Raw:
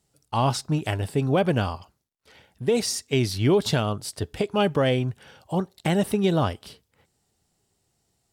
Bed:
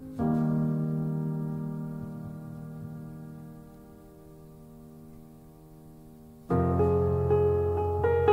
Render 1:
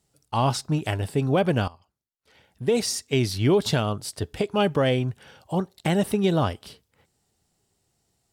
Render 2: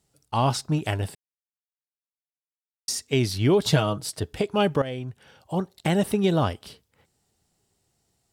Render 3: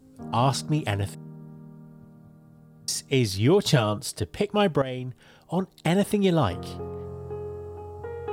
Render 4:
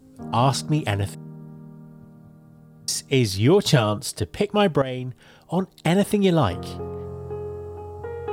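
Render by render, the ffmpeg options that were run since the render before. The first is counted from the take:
-filter_complex "[0:a]asplit=2[s0][s1];[s0]atrim=end=1.68,asetpts=PTS-STARTPTS,afade=t=out:st=1.676:d=0.004:c=hsin:silence=0.141254[s2];[s1]atrim=start=1.68,asetpts=PTS-STARTPTS,afade=t=in:d=0.95:c=qua:silence=0.141254[s3];[s2][s3]concat=n=2:v=0:a=1"
-filter_complex "[0:a]asettb=1/sr,asplit=3[s0][s1][s2];[s0]atrim=end=3.664[s3];[s1]atrim=start=3.66:end=4.2,asetpts=PTS-STARTPTS,afade=t=in:d=0.004:c=qsin,afade=t=out:st=0.536:d=0.004:c=qsin,aecho=1:1:6.3:0.71,atrim=end_sample=23814[s4];[s2]atrim=start=4.196[s5];[s3][s4]acrossfade=d=0.004:c1=hsin:c2=qsin[s6];[s6][s5]acrossfade=d=0.004:c1=qsin:c2=hsin,asplit=4[s7][s8][s9][s10];[s7]atrim=end=1.15,asetpts=PTS-STARTPTS,afade=t=out:st=1.146:d=0.004:c=hsin[s11];[s8]atrim=start=1.15:end=2.88,asetpts=PTS-STARTPTS,volume=0[s12];[s9]atrim=start=2.88:end=4.82,asetpts=PTS-STARTPTS,afade=t=in:d=0.004:c=hsin,afade=t=out:st=1.936:d=0.004:c=hsin:silence=0.223872[s13];[s10]atrim=start=4.82,asetpts=PTS-STARTPTS,afade=t=in:d=0.91:silence=0.223872[s14];[s11][s12][s13][s14]concat=n=4:v=0:a=1"
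-filter_complex "[1:a]volume=0.282[s0];[0:a][s0]amix=inputs=2:normalize=0"
-af "volume=1.41"

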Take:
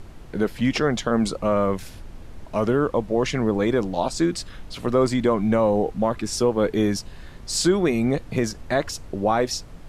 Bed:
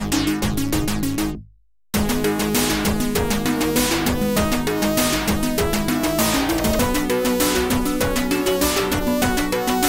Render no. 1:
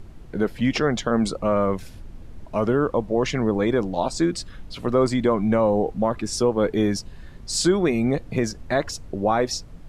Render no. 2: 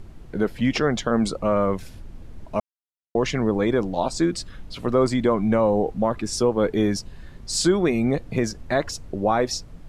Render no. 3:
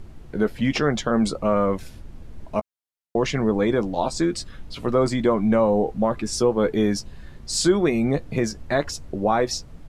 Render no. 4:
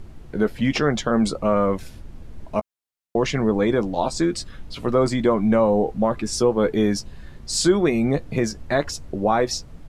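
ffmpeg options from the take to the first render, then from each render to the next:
-af "afftdn=nr=6:nf=-42"
-filter_complex "[0:a]asplit=3[s0][s1][s2];[s0]atrim=end=2.6,asetpts=PTS-STARTPTS,afade=t=out:st=2.596:d=0.004:c=hsin[s3];[s1]atrim=start=2.6:end=3.15,asetpts=PTS-STARTPTS,volume=0[s4];[s2]atrim=start=3.15,asetpts=PTS-STARTPTS,afade=t=in:d=0.004:c=hsin[s5];[s3][s4][s5]concat=n=3:v=0:a=1"
-filter_complex "[0:a]asplit=2[s0][s1];[s1]adelay=14,volume=0.282[s2];[s0][s2]amix=inputs=2:normalize=0"
-af "volume=1.12"

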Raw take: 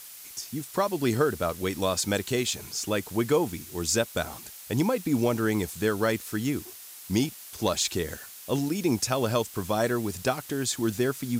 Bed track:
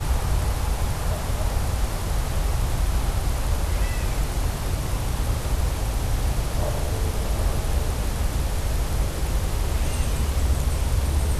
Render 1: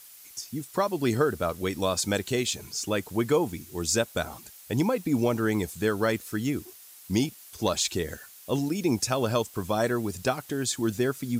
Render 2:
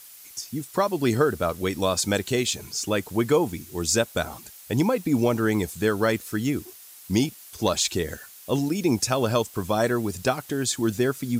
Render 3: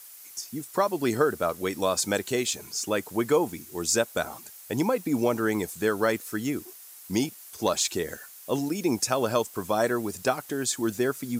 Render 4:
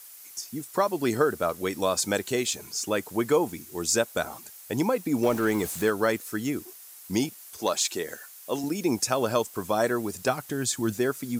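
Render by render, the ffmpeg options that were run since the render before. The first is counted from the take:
-af "afftdn=nr=6:nf=-45"
-af "volume=1.41"
-af "highpass=f=310:p=1,equalizer=f=3400:w=1:g=-4.5"
-filter_complex "[0:a]asettb=1/sr,asplit=3[s0][s1][s2];[s0]atrim=end=5.234[s3];[s1]atrim=start=5.23:end=5.9,asetpts=PTS-STARTPTS,afade=t=in:d=0.004:c=qsin,afade=t=out:st=0.666:d=0.004:c=qsin,aeval=exprs='val(0)+0.5*0.02*sgn(val(0))':c=same[s4];[s2]atrim=start=5.896[s5];[s3][s4]acrossfade=d=0.004:c1=hsin:c2=qsin[s6];[s6][s5]acrossfade=d=0.004:c1=qsin:c2=hsin,asettb=1/sr,asplit=3[s7][s8][s9];[s7]atrim=end=7.594[s10];[s8]atrim=start=7.59:end=8.64,asetpts=PTS-STARTPTS,afade=t=in:d=0.004:c=qsin,afade=t=out:st=1.046:d=0.004:c=qsin,highpass=f=320:p=1[s11];[s9]atrim=start=8.636[s12];[s10][s11]acrossfade=d=0.004:c1=hsin:c2=qsin[s13];[s13][s12]acrossfade=d=0.004:c1=qsin:c2=hsin,asplit=3[s14][s15][s16];[s14]afade=t=out:st=10.28:d=0.02[s17];[s15]asubboost=boost=2:cutoff=210,afade=t=in:st=10.28:d=0.02,afade=t=out:st=10.93:d=0.02[s18];[s16]afade=t=in:st=10.93:d=0.02[s19];[s17][s18][s19]amix=inputs=3:normalize=0"

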